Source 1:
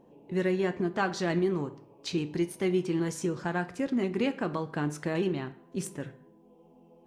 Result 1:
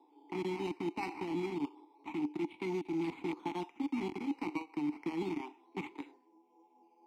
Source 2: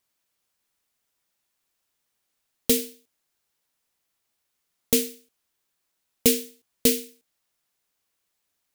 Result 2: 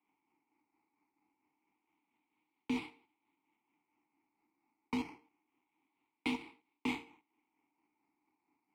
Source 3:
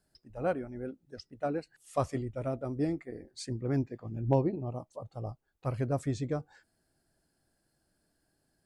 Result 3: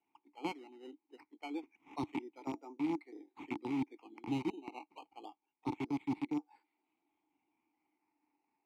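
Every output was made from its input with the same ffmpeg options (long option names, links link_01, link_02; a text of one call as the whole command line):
ffmpeg -i in.wav -filter_complex "[0:a]highshelf=frequency=2100:gain=-3.5,acrossover=split=420|4000[link_01][link_02][link_03];[link_01]acrusher=bits=4:mix=0:aa=0.000001[link_04];[link_04][link_02][link_03]amix=inputs=3:normalize=0,acrossover=split=1500[link_05][link_06];[link_05]aeval=exprs='val(0)*(1-0.5/2+0.5/2*cos(2*PI*4.4*n/s))':channel_layout=same[link_07];[link_06]aeval=exprs='val(0)*(1-0.5/2-0.5/2*cos(2*PI*4.4*n/s))':channel_layout=same[link_08];[link_07][link_08]amix=inputs=2:normalize=0,acrusher=samples=10:mix=1:aa=0.000001:lfo=1:lforange=6:lforate=0.27,acrossover=split=140|3000[link_09][link_10][link_11];[link_10]acompressor=threshold=-35dB:ratio=3[link_12];[link_09][link_12][link_11]amix=inputs=3:normalize=0,asplit=3[link_13][link_14][link_15];[link_13]bandpass=frequency=300:width_type=q:width=8,volume=0dB[link_16];[link_14]bandpass=frequency=870:width_type=q:width=8,volume=-6dB[link_17];[link_15]bandpass=frequency=2240:width_type=q:width=8,volume=-9dB[link_18];[link_16][link_17][link_18]amix=inputs=3:normalize=0,areverse,acompressor=threshold=-47dB:ratio=5,areverse,volume=14.5dB" out.wav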